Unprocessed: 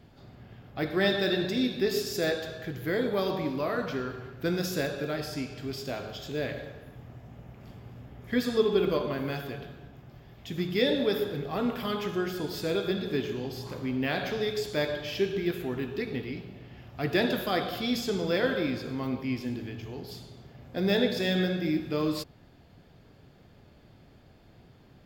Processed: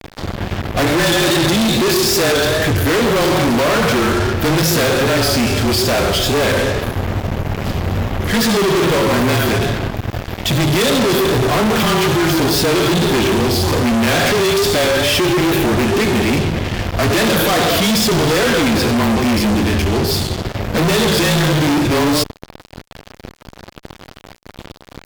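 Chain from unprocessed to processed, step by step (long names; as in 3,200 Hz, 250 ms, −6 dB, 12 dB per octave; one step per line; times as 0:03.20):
pitch vibrato 2.4 Hz 56 cents
frequency shifter −28 Hz
fuzz pedal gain 48 dB, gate −50 dBFS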